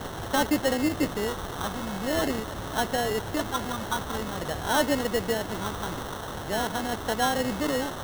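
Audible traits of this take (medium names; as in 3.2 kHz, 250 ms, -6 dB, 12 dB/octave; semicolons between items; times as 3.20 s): a quantiser's noise floor 6-bit, dither triangular; phasing stages 6, 0.46 Hz, lowest notch 540–1700 Hz; aliases and images of a low sample rate 2.4 kHz, jitter 0%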